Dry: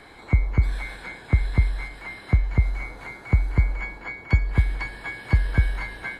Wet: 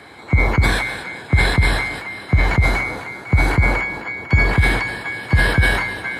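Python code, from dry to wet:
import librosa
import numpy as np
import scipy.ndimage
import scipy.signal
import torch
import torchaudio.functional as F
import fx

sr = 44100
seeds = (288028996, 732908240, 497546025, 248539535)

y = scipy.signal.sosfilt(scipy.signal.butter(4, 75.0, 'highpass', fs=sr, output='sos'), x)
y = fx.sustainer(y, sr, db_per_s=48.0)
y = y * 10.0 ** (6.0 / 20.0)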